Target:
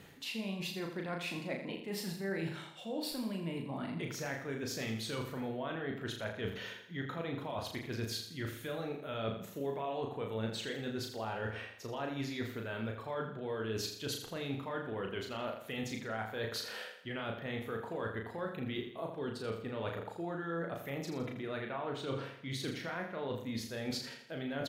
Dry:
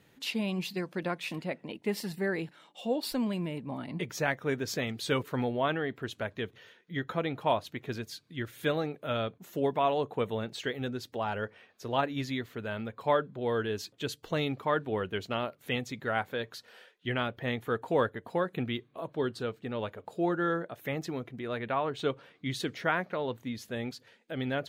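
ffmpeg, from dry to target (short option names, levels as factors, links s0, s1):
-filter_complex "[0:a]alimiter=limit=0.0631:level=0:latency=1,areverse,acompressor=threshold=0.00501:ratio=16,areverse,asplit=2[s0][s1];[s1]adelay=36,volume=0.631[s2];[s0][s2]amix=inputs=2:normalize=0,aecho=1:1:82|164|246|328|410:0.376|0.162|0.0695|0.0299|0.0128,volume=2.82"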